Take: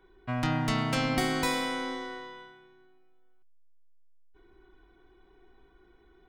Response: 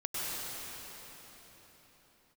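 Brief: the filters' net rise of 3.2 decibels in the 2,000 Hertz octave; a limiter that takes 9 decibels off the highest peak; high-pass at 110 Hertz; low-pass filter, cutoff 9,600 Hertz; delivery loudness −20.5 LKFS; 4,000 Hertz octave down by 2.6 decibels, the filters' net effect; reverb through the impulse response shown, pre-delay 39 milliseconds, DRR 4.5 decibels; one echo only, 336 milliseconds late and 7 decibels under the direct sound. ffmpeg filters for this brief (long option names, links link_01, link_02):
-filter_complex "[0:a]highpass=110,lowpass=9600,equalizer=frequency=2000:width_type=o:gain=5,equalizer=frequency=4000:width_type=o:gain=-5.5,alimiter=limit=-24dB:level=0:latency=1,aecho=1:1:336:0.447,asplit=2[link_01][link_02];[1:a]atrim=start_sample=2205,adelay=39[link_03];[link_02][link_03]afir=irnorm=-1:irlink=0,volume=-11dB[link_04];[link_01][link_04]amix=inputs=2:normalize=0,volume=11.5dB"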